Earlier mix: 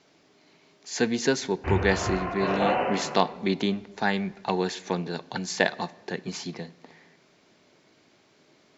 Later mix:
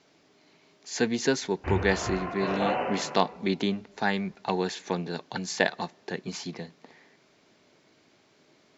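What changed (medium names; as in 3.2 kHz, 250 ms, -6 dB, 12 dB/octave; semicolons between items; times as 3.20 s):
speech: send -11.0 dB; background: send -11.5 dB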